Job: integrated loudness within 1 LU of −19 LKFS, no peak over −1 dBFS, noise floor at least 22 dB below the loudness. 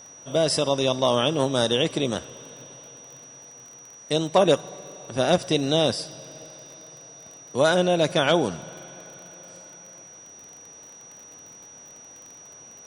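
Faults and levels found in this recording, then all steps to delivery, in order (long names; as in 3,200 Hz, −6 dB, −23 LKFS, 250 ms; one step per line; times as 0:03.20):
crackle rate 28 per second; interfering tone 5,800 Hz; level of the tone −44 dBFS; integrated loudness −23.0 LKFS; sample peak −7.0 dBFS; target loudness −19.0 LKFS
→ click removal
notch filter 5,800 Hz, Q 30
level +4 dB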